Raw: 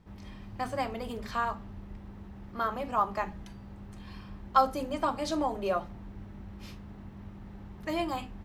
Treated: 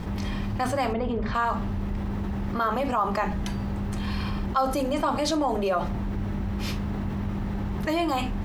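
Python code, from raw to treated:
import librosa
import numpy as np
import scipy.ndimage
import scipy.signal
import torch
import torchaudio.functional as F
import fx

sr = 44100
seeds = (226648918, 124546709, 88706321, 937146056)

y = fx.spacing_loss(x, sr, db_at_10k=33, at=(0.92, 1.34), fade=0.02)
y = fx.room_flutter(y, sr, wall_m=11.0, rt60_s=0.85, at=(3.98, 4.46))
y = fx.env_flatten(y, sr, amount_pct=70)
y = y * librosa.db_to_amplitude(-2.5)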